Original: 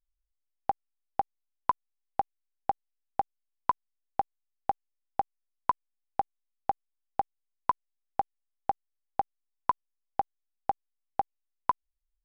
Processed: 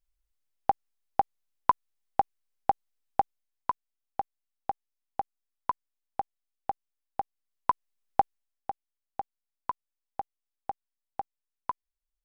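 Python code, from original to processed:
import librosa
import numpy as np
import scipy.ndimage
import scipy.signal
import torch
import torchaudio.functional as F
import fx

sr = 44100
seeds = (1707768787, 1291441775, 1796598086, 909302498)

y = fx.gain(x, sr, db=fx.line((3.2, 4.0), (3.7, -3.0), (7.2, -3.0), (8.2, 6.0), (8.7, -6.0)))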